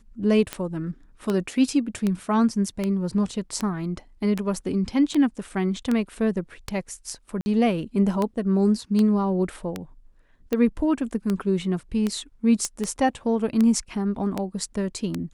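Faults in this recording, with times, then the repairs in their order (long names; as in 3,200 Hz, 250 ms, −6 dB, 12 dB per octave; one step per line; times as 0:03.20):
scratch tick 78 rpm −12 dBFS
0:07.41–0:07.46: drop-out 50 ms
0:12.65: click −13 dBFS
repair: click removal
repair the gap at 0:07.41, 50 ms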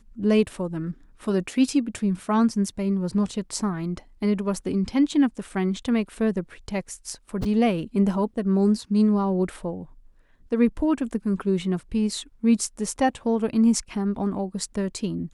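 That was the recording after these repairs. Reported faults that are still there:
none of them is left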